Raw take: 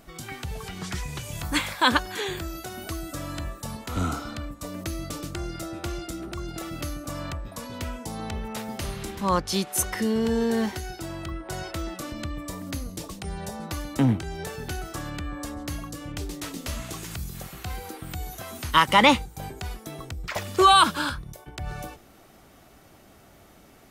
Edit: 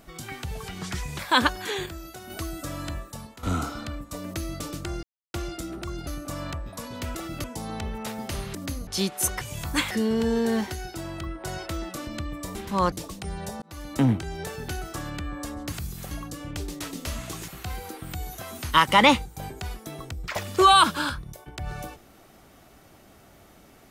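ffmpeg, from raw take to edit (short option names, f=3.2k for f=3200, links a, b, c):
-filter_complex "[0:a]asplit=20[a][b][c][d][e][f][g][h][i][j][k][l][m][n][o][p][q][r][s][t];[a]atrim=end=1.192[u];[b]atrim=start=1.688:end=2.362[v];[c]atrim=start=2.358:end=2.802,asetpts=PTS-STARTPTS,volume=-5dB[w];[d]atrim=start=2.798:end=3.93,asetpts=PTS-STARTPTS,afade=t=out:st=0.612:d=0.52:silence=0.223872[x];[e]atrim=start=3.93:end=5.53,asetpts=PTS-STARTPTS,afade=t=in:d=0.004:c=hsin:silence=0.223872,afade=t=out:st=1.596:d=0.004:c=hsin[y];[f]atrim=start=5.53:end=5.84,asetpts=PTS-STARTPTS,volume=0[z];[g]atrim=start=5.84:end=6.572,asetpts=PTS-STARTPTS,afade=t=in:d=0.004:c=hsin[aa];[h]atrim=start=6.858:end=7.942[ab];[i]atrim=start=6.568:end=6.862[ac];[j]atrim=start=7.938:end=9.052[ad];[k]atrim=start=12.598:end=12.922[ae];[l]atrim=start=9.418:end=9.962[af];[m]atrim=start=1.188:end=1.692[ag];[n]atrim=start=9.958:end=12.602[ah];[o]atrim=start=9.048:end=9.422[ai];[p]atrim=start=12.918:end=13.62,asetpts=PTS-STARTPTS,afade=t=out:st=0.698:d=0.004:c=hsin[aj];[q]atrim=start=13.62:end=15.722,asetpts=PTS-STARTPTS,afade=t=in:d=0.34[ak];[r]atrim=start=17.088:end=17.482[al];[s]atrim=start=15.718:end=17.092[am];[t]atrim=start=17.478[an];[u][v]acrossfade=d=0.004:c1=hsin:c2=hsin[ao];[ao][w]acrossfade=d=0.004:c1=hsin:c2=hsin[ap];[x][y][z][aa]concat=n=4:v=0:a=1[aq];[ap][aq]acrossfade=d=0.004:c1=hsin:c2=hsin[ar];[ar][ab]acrossfade=d=0.004:c1=hsin:c2=hsin[as];[as][ac]acrossfade=d=0.004:c1=hsin:c2=hsin[at];[at][ad]acrossfade=d=0.004:c1=hsin:c2=hsin[au];[au][ae]acrossfade=d=0.004:c1=hsin:c2=hsin[av];[av][af]acrossfade=d=0.004:c1=hsin:c2=hsin[aw];[aw][ag]acrossfade=d=0.004:c1=hsin:c2=hsin[ax];[ax][ah]acrossfade=d=0.004:c1=hsin:c2=hsin[ay];[ay][ai]acrossfade=d=0.004:c1=hsin:c2=hsin[az];[aj][ak]concat=n=2:v=0:a=1[ba];[az][ba]acrossfade=d=0.004:c1=hsin:c2=hsin[bb];[bb][al]acrossfade=d=0.004:c1=hsin:c2=hsin[bc];[bc][am]acrossfade=d=0.004:c1=hsin:c2=hsin[bd];[bd][an]acrossfade=d=0.004:c1=hsin:c2=hsin"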